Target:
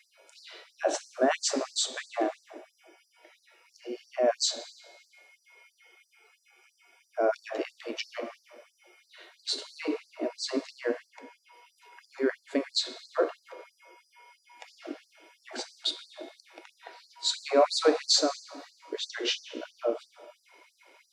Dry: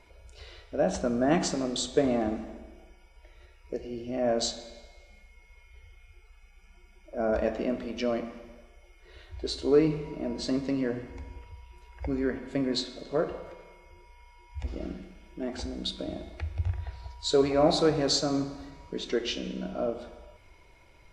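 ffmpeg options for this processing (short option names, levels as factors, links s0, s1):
-filter_complex "[0:a]asettb=1/sr,asplit=3[s0][s1][s2];[s0]atrim=end=11.074[s3];[s1]atrim=start=11.07:end=11.53,asetpts=PTS-STARTPTS,afade=t=in:d=0.004:c=qsin,afade=t=out:st=0.456:d=0.004:c=qsin,bass=f=250:g=14,treble=f=4000:g=-3[s4];[s2]atrim=start=11.526[s5];[s3][s4]acrossfade=d=0.004:c1=hsin:c2=qsin[s6];[s6][s5]acrossfade=d=0.004:c1=qsin:c2=hsin,afftfilt=real='re*gte(b*sr/1024,250*pow(4400/250,0.5+0.5*sin(2*PI*3*pts/sr)))':imag='im*gte(b*sr/1024,250*pow(4400/250,0.5+0.5*sin(2*PI*3*pts/sr)))':win_size=1024:overlap=0.75,volume=1.58"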